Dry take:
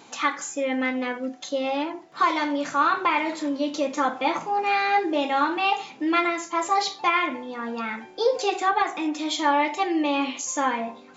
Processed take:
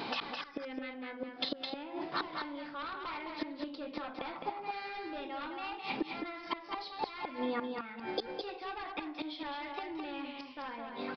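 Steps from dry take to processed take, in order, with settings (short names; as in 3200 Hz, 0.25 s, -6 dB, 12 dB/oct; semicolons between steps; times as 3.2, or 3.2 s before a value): added harmonics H 2 -11 dB, 5 -9 dB, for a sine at -10.5 dBFS; flipped gate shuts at -15 dBFS, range -26 dB; compressor 6:1, threshold -34 dBFS, peak gain reduction 13 dB; echo 0.211 s -5 dB; downsampling 11025 Hz; gain +1.5 dB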